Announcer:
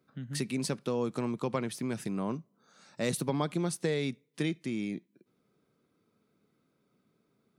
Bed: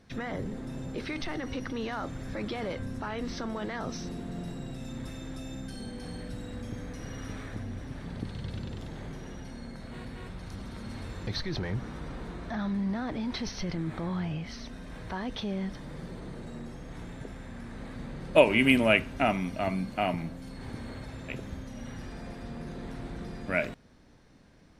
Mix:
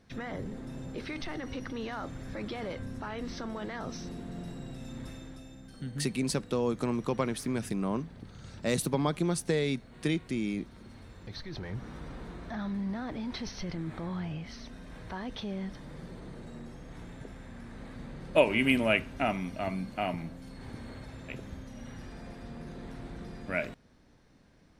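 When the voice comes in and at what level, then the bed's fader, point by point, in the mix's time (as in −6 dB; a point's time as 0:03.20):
5.65 s, +2.0 dB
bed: 0:05.11 −3 dB
0:05.56 −10.5 dB
0:11.21 −10.5 dB
0:11.94 −3.5 dB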